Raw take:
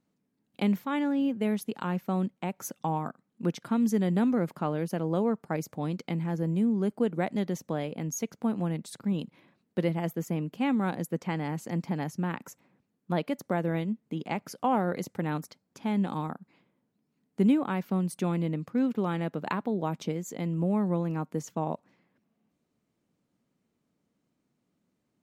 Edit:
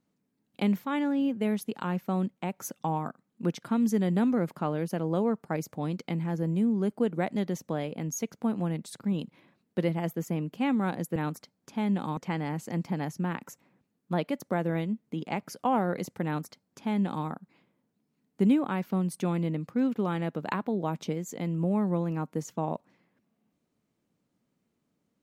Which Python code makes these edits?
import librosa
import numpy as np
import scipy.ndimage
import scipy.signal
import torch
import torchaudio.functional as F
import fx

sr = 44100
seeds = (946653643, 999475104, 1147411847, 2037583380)

y = fx.edit(x, sr, fx.duplicate(start_s=15.24, length_s=1.01, to_s=11.16), tone=tone)